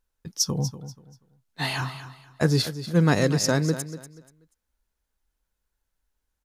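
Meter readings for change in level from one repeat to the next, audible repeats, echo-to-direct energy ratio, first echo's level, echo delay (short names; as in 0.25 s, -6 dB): -11.5 dB, 2, -12.5 dB, -13.0 dB, 0.241 s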